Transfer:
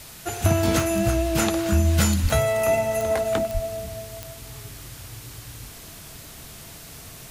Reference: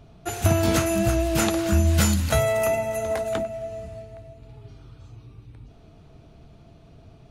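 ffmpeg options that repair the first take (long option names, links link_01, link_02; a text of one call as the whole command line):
ffmpeg -i in.wav -filter_complex "[0:a]adeclick=threshold=4,asplit=3[link_01][link_02][link_03];[link_01]afade=type=out:start_time=2.22:duration=0.02[link_04];[link_02]highpass=frequency=140:width=0.5412,highpass=frequency=140:width=1.3066,afade=type=in:start_time=2.22:duration=0.02,afade=type=out:start_time=2.34:duration=0.02[link_05];[link_03]afade=type=in:start_time=2.34:duration=0.02[link_06];[link_04][link_05][link_06]amix=inputs=3:normalize=0,asplit=3[link_07][link_08][link_09];[link_07]afade=type=out:start_time=3.53:duration=0.02[link_10];[link_08]highpass=frequency=140:width=0.5412,highpass=frequency=140:width=1.3066,afade=type=in:start_time=3.53:duration=0.02,afade=type=out:start_time=3.65:duration=0.02[link_11];[link_09]afade=type=in:start_time=3.65:duration=0.02[link_12];[link_10][link_11][link_12]amix=inputs=3:normalize=0,afwtdn=0.0079,asetnsamples=nb_out_samples=441:pad=0,asendcmd='2.68 volume volume -3dB',volume=0dB" out.wav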